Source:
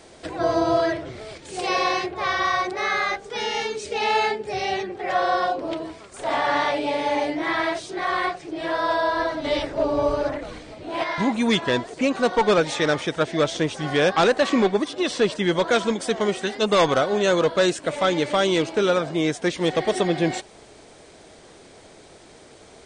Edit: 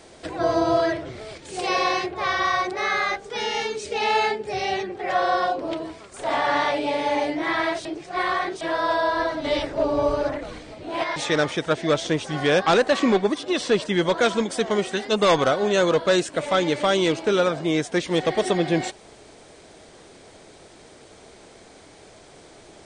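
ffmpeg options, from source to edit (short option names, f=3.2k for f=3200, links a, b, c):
-filter_complex "[0:a]asplit=4[a][b][c][d];[a]atrim=end=7.852[e];[b]atrim=start=7.848:end=8.612,asetpts=PTS-STARTPTS,areverse[f];[c]atrim=start=8.608:end=11.162[g];[d]atrim=start=12.658[h];[e][f]acrossfade=d=0.004:c1=hsin:c2=hsin[i];[i][g]acrossfade=d=0.004:c1=hsin:c2=hsin[j];[j][h]acrossfade=d=0.004:c1=hsin:c2=hsin"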